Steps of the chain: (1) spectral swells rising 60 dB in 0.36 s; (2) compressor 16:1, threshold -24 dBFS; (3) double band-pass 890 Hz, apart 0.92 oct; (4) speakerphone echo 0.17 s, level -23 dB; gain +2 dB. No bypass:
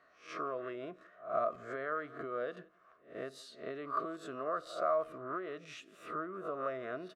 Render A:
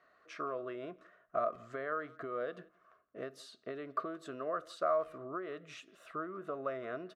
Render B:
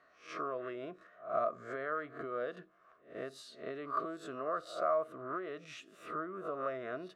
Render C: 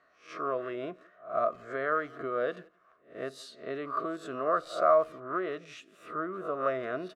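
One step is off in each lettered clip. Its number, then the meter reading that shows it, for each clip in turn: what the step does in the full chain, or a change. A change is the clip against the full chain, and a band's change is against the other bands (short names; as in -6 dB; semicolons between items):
1, momentary loudness spread change +2 LU; 4, echo-to-direct -28.5 dB to none; 2, mean gain reduction 4.0 dB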